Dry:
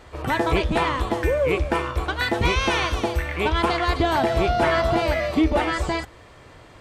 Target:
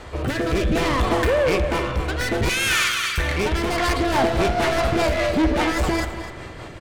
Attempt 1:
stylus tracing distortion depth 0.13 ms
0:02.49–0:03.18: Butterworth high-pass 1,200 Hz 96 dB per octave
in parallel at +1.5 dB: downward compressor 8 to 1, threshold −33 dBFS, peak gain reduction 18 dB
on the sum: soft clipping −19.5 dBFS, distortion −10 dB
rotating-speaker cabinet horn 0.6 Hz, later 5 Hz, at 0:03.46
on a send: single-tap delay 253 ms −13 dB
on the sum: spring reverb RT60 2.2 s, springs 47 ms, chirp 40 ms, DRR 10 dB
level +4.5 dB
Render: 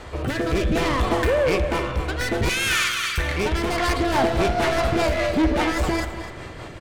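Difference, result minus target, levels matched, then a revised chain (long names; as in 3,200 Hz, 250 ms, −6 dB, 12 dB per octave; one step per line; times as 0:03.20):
downward compressor: peak gain reduction +8 dB
stylus tracing distortion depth 0.13 ms
0:02.49–0:03.18: Butterworth high-pass 1,200 Hz 96 dB per octave
in parallel at +1.5 dB: downward compressor 8 to 1, threshold −24 dBFS, peak gain reduction 10 dB
on the sum: soft clipping −19.5 dBFS, distortion −9 dB
rotating-speaker cabinet horn 0.6 Hz, later 5 Hz, at 0:03.46
on a send: single-tap delay 253 ms −13 dB
on the sum: spring reverb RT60 2.2 s, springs 47 ms, chirp 40 ms, DRR 10 dB
level +4.5 dB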